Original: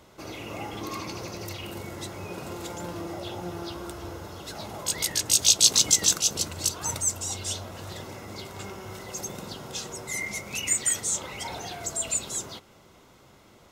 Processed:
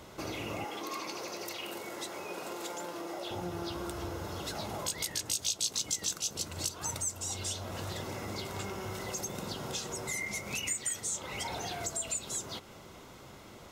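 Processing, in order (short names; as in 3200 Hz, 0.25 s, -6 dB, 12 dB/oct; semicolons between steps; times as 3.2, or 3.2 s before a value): compressor 3:1, threshold -40 dBFS, peak gain reduction 20 dB; 0.64–3.31 HPF 350 Hz 12 dB/oct; gain +4 dB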